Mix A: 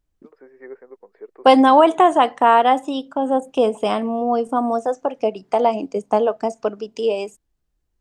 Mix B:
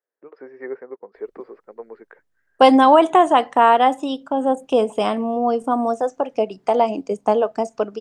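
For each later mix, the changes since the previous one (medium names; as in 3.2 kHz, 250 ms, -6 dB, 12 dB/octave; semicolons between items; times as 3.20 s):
first voice +7.0 dB; second voice: entry +1.15 s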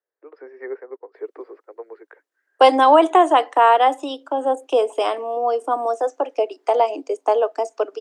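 master: add steep high-pass 290 Hz 72 dB/octave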